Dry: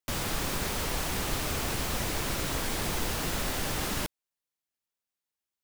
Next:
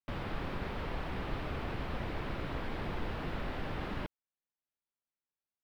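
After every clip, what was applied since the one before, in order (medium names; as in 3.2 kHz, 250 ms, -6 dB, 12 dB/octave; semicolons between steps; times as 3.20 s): distance through air 410 m; trim -4 dB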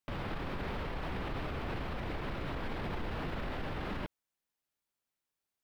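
peak limiter -35 dBFS, peak gain reduction 10.5 dB; trim +5.5 dB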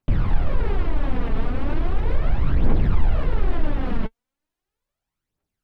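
tilt EQ -2.5 dB/octave; phaser 0.37 Hz, delay 4.6 ms, feedback 59%; trim +5 dB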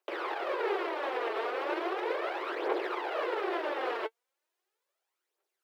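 Chebyshev high-pass 350 Hz, order 6; trim +2 dB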